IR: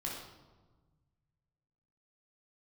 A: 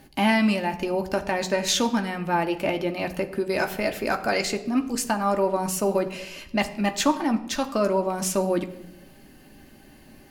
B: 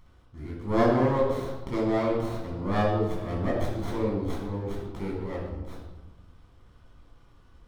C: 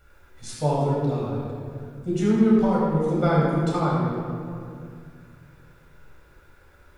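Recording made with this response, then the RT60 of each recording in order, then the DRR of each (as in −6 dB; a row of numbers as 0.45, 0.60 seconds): B; 0.90, 1.3, 2.3 seconds; 5.0, −4.0, −6.0 decibels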